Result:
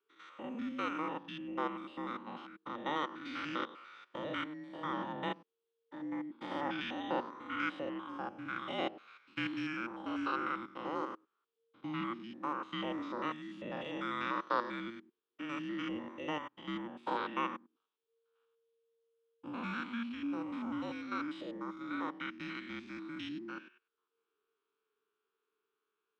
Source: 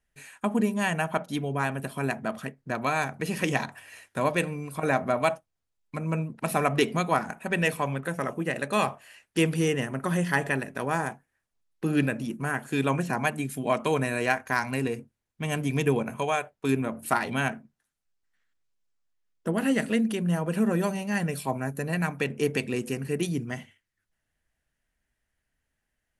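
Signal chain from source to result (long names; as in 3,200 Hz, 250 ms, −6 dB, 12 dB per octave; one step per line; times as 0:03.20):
spectrum averaged block by block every 100 ms
frequency shifter −460 Hz
loudspeaker in its box 460–3,800 Hz, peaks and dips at 660 Hz −7 dB, 2,000 Hz −9 dB, 3,300 Hz +5 dB
level −1.5 dB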